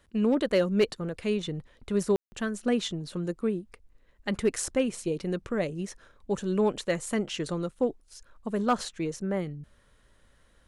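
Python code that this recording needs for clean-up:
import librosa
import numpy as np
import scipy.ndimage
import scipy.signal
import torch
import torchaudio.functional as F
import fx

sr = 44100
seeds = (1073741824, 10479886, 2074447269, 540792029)

y = fx.fix_declip(x, sr, threshold_db=-16.0)
y = fx.fix_ambience(y, sr, seeds[0], print_start_s=9.73, print_end_s=10.23, start_s=2.16, end_s=2.32)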